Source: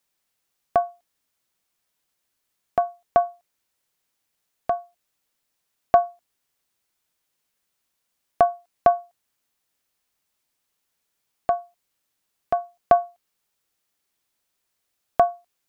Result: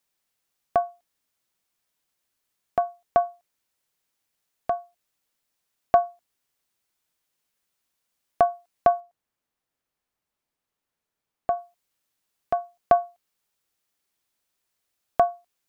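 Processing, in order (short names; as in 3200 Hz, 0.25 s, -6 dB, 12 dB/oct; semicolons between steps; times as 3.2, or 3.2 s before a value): 9–11.57 high shelf 2300 Hz -10 dB; gain -2 dB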